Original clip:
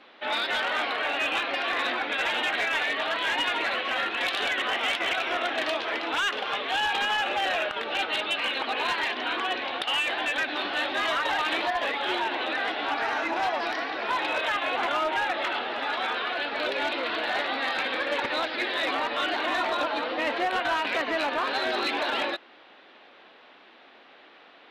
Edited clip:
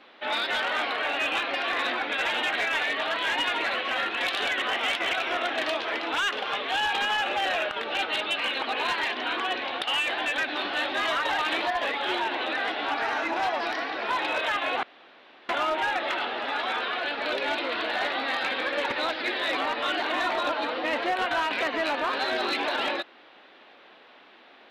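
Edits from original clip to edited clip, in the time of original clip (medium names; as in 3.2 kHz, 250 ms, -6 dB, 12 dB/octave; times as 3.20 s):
14.83 s: insert room tone 0.66 s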